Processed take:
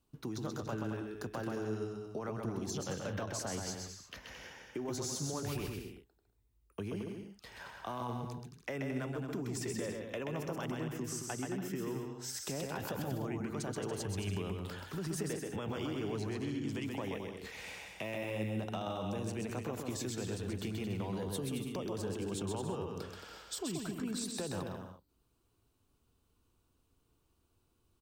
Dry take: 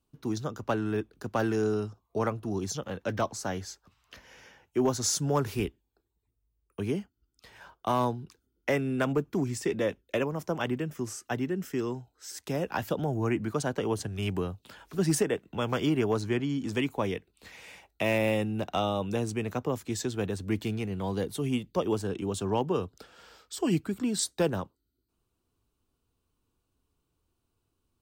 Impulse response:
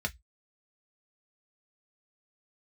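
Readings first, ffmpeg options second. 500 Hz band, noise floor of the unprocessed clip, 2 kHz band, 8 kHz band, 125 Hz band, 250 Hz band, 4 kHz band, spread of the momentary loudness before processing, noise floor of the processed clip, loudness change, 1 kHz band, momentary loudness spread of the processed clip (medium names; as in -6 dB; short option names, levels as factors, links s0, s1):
-9.5 dB, -79 dBFS, -8.0 dB, -6.0 dB, -6.5 dB, -8.0 dB, -6.0 dB, 10 LU, -75 dBFS, -8.5 dB, -9.5 dB, 7 LU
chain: -af "alimiter=level_in=1.5:limit=0.0631:level=0:latency=1:release=58,volume=0.668,acompressor=threshold=0.0112:ratio=3,aecho=1:1:130|221|284.7|329.3|360.5:0.631|0.398|0.251|0.158|0.1,volume=1.12"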